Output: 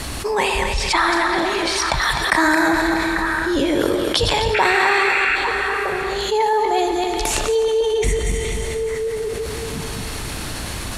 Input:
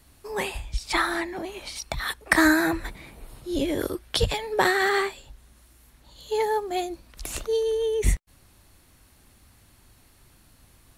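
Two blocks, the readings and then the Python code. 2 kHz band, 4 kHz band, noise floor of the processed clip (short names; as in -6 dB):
+8.5 dB, +10.0 dB, -28 dBFS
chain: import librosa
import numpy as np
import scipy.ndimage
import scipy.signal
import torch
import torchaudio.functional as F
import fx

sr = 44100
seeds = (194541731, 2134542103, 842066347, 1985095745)

y = fx.reverse_delay_fb(x, sr, ms=128, feedback_pct=45, wet_db=-6)
y = fx.echo_stepped(y, sr, ms=422, hz=3400.0, octaves=-1.4, feedback_pct=70, wet_db=-11)
y = fx.dynamic_eq(y, sr, hz=960.0, q=3.6, threshold_db=-44.0, ratio=4.0, max_db=8)
y = scipy.signal.sosfilt(scipy.signal.butter(2, 8900.0, 'lowpass', fs=sr, output='sos'), y)
y = fx.spec_paint(y, sr, seeds[0], shape='noise', start_s=4.54, length_s=0.82, low_hz=1300.0, high_hz=2800.0, level_db=-26.0)
y = fx.low_shelf(y, sr, hz=200.0, db=-5.0)
y = fx.rev_schroeder(y, sr, rt60_s=2.8, comb_ms=27, drr_db=12.0)
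y = fx.env_flatten(y, sr, amount_pct=70)
y = F.gain(torch.from_numpy(y), -1.0).numpy()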